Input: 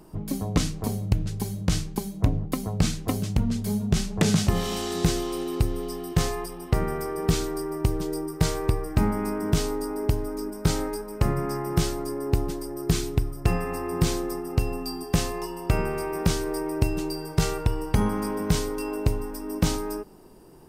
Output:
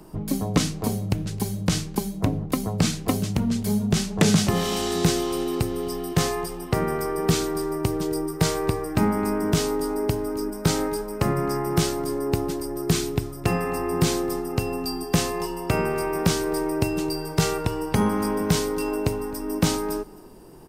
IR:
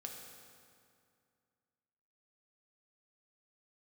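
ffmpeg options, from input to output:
-filter_complex "[0:a]aecho=1:1:262:0.0631,acrossover=split=120|3100[s0][s1][s2];[s0]acompressor=threshold=0.0126:ratio=6[s3];[s3][s1][s2]amix=inputs=3:normalize=0,volume=1.58"

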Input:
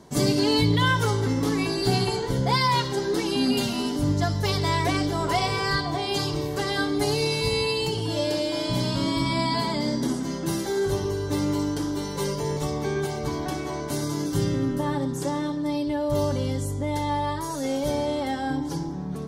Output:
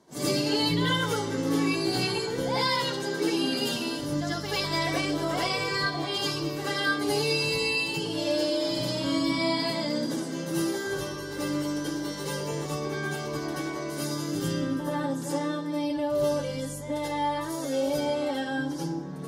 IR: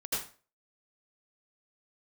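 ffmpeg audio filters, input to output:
-filter_complex "[0:a]highpass=f=250:p=1[s0];[1:a]atrim=start_sample=2205,afade=t=out:st=0.15:d=0.01,atrim=end_sample=7056[s1];[s0][s1]afir=irnorm=-1:irlink=0,volume=0.631"

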